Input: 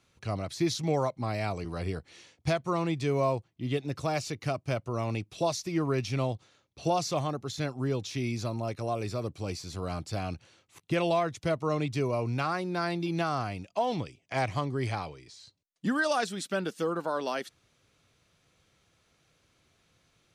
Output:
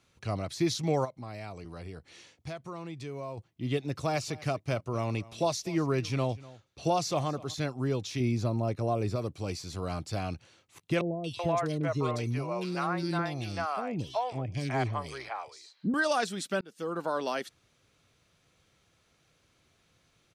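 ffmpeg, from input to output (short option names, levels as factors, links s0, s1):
-filter_complex "[0:a]asplit=3[s0][s1][s2];[s0]afade=t=out:st=1.04:d=0.02[s3];[s1]acompressor=threshold=0.00562:ratio=2:attack=3.2:release=140:knee=1:detection=peak,afade=t=in:st=1.04:d=0.02,afade=t=out:st=3.37:d=0.02[s4];[s2]afade=t=in:st=3.37:d=0.02[s5];[s3][s4][s5]amix=inputs=3:normalize=0,asplit=3[s6][s7][s8];[s6]afade=t=out:st=4.04:d=0.02[s9];[s7]aecho=1:1:245:0.1,afade=t=in:st=4.04:d=0.02,afade=t=out:st=7.53:d=0.02[s10];[s8]afade=t=in:st=7.53:d=0.02[s11];[s9][s10][s11]amix=inputs=3:normalize=0,asettb=1/sr,asplit=3[s12][s13][s14];[s12]atrim=end=8.204[s15];[s13]atrim=start=8.2:end=9.16,asetpts=PTS-STARTPTS,afade=t=in:d=0.004:c=qsin,afade=t=out:st=0.956:d=0.004:c=qsin,tiltshelf=f=970:g=4.5[s16];[s14]atrim=start=9.156[s17];[s15][s16]acrossfade=d=0.004:c1=hsin:c2=qsin[s18];[s18][s17]acrossfade=d=0.004:c1=qsin:c2=hsin,asettb=1/sr,asplit=3[s19][s20][s21];[s19]atrim=end=11.014[s22];[s20]atrim=start=11.01:end=15.94,asetpts=PTS-STARTPTS,afade=t=in:d=0.004:c=qsin,afade=t=out:st=4.926:d=0.004:c=qsin,acrossover=split=510|2600[s23][s24][s25];[s25]adelay=230[s26];[s24]adelay=380[s27];[s23][s27][s26]amix=inputs=3:normalize=0,atrim=end_sample=217413[s28];[s21]atrim=start=15.936[s29];[s22][s28]acrossfade=d=0.004:c1=hsin:c2=qsin[s30];[s30][s29]acrossfade=d=0.004:c1=qsin:c2=hsin,asplit=2[s31][s32];[s31]atrim=end=16.61,asetpts=PTS-STARTPTS,afade=t=out:st=16.606:d=0.004:c=hsin[s33];[s32]atrim=start=16.61,asetpts=PTS-STARTPTS,afade=t=in:d=0.44[s34];[s33][s34]concat=n=2:v=0:a=1"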